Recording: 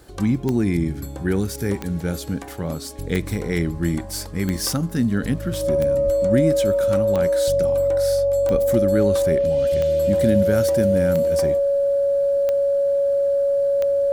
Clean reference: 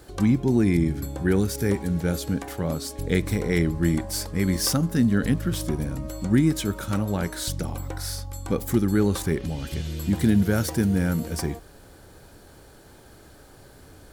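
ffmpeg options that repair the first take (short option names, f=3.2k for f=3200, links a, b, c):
-filter_complex "[0:a]adeclick=t=4,bandreject=f=560:w=30,asplit=3[a][b][c];[a]afade=t=out:st=6.05:d=0.02[d];[b]highpass=f=140:w=0.5412,highpass=f=140:w=1.3066,afade=t=in:st=6.05:d=0.02,afade=t=out:st=6.17:d=0.02[e];[c]afade=t=in:st=6.17:d=0.02[f];[d][e][f]amix=inputs=3:normalize=0,asplit=3[g][h][i];[g]afade=t=out:st=8.51:d=0.02[j];[h]highpass=f=140:w=0.5412,highpass=f=140:w=1.3066,afade=t=in:st=8.51:d=0.02,afade=t=out:st=8.63:d=0.02[k];[i]afade=t=in:st=8.63:d=0.02[l];[j][k][l]amix=inputs=3:normalize=0"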